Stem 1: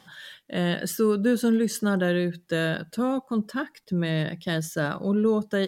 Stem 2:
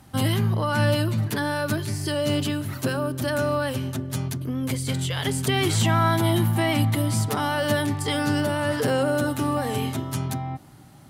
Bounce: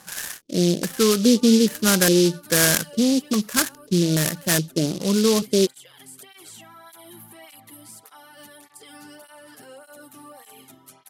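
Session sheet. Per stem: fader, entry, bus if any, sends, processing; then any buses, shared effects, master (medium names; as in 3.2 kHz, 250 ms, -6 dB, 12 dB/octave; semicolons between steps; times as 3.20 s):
+3.0 dB, 0.00 s, no send, LFO low-pass square 1.2 Hz 370–1700 Hz; delay time shaken by noise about 4.2 kHz, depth 0.1 ms
-13.5 dB, 0.75 s, no send, high-pass 540 Hz 6 dB/octave; peak limiter -21 dBFS, peak gain reduction 9 dB; cancelling through-zero flanger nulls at 1.7 Hz, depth 2.2 ms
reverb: none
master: peaking EQ 12 kHz +10.5 dB 1.1 oct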